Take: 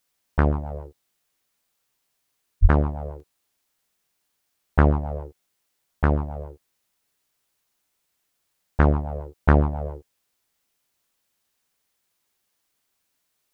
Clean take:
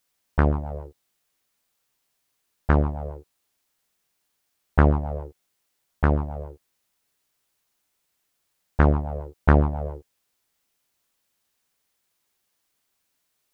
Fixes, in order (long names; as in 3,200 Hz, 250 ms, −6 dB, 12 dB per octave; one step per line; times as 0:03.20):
high-pass at the plosives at 0:02.61
repair the gap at 0:03.20, 2.3 ms